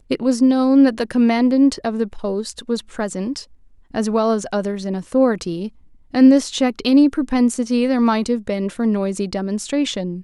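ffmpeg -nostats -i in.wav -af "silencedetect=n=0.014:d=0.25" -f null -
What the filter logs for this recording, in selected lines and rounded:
silence_start: 3.44
silence_end: 3.91 | silence_duration: 0.47
silence_start: 5.69
silence_end: 6.14 | silence_duration: 0.45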